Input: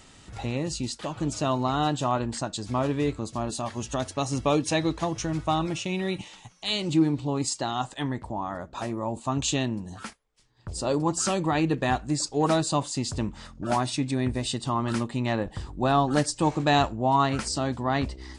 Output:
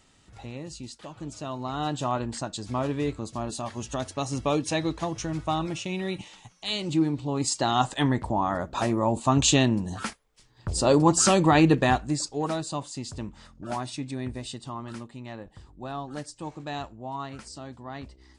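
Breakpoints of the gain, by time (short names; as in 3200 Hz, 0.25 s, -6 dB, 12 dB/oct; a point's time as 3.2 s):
1.51 s -9 dB
2 s -2 dB
7.25 s -2 dB
7.76 s +6 dB
11.7 s +6 dB
12.53 s -6.5 dB
14.33 s -6.5 dB
15.22 s -13 dB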